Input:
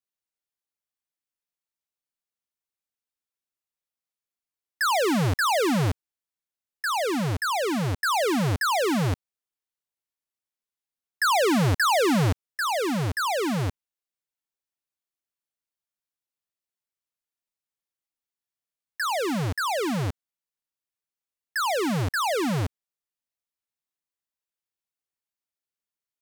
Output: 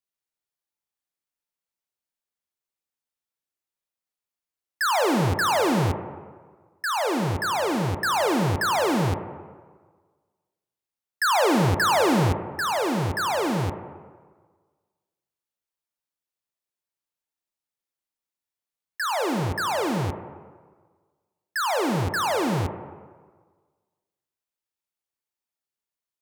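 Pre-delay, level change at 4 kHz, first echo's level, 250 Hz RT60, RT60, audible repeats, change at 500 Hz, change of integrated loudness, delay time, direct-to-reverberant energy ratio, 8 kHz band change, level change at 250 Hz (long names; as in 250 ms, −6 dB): 20 ms, 0.0 dB, no echo audible, 1.4 s, 1.5 s, no echo audible, +1.5 dB, +1.0 dB, no echo audible, 6.0 dB, 0.0 dB, +0.5 dB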